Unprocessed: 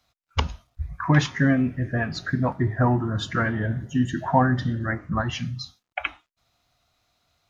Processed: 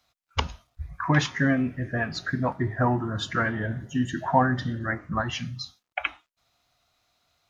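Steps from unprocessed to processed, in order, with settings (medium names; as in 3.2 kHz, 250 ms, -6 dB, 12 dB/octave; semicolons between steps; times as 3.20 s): bass shelf 290 Hz -5.5 dB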